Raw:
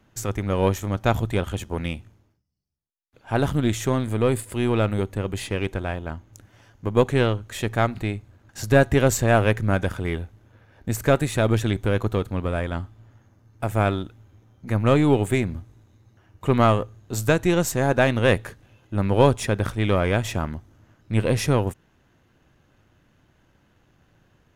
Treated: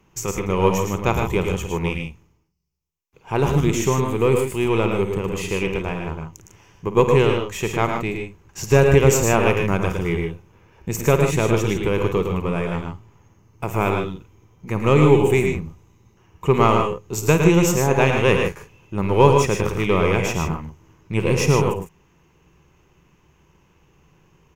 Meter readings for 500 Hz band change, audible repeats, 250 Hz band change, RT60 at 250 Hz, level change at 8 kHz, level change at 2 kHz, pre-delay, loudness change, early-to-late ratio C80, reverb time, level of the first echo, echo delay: +4.5 dB, 3, +2.5 dB, no reverb, +5.0 dB, +2.5 dB, no reverb, +3.0 dB, no reverb, no reverb, -12.5 dB, 53 ms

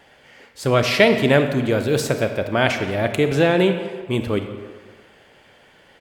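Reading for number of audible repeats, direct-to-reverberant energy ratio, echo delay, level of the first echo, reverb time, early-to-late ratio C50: 1, 7.0 dB, 173 ms, -19.0 dB, 1.6 s, 8.0 dB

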